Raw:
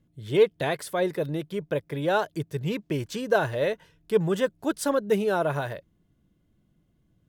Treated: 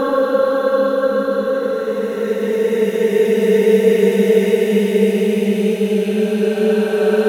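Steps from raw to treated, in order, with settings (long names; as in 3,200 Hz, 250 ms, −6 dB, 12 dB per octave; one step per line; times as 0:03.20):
extreme stretch with random phases 23×, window 0.25 s, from 0:04.96
feedback delay with all-pass diffusion 485 ms, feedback 44%, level −8 dB
level +8 dB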